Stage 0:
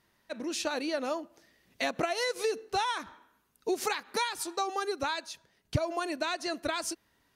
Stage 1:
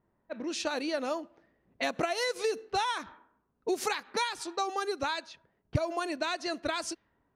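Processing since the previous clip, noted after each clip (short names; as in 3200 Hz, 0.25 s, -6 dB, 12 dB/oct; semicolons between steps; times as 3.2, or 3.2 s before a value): low-pass opened by the level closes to 820 Hz, open at -28 dBFS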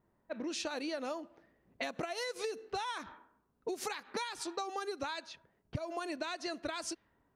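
compressor, threshold -35 dBFS, peak gain reduction 12.5 dB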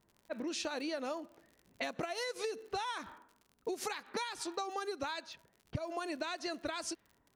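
crackle 68/s -49 dBFS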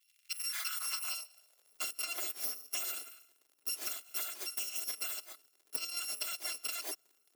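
FFT order left unsorted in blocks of 256 samples; high-pass sweep 2700 Hz -> 370 Hz, 0.07–1.86; notches 50/100/150 Hz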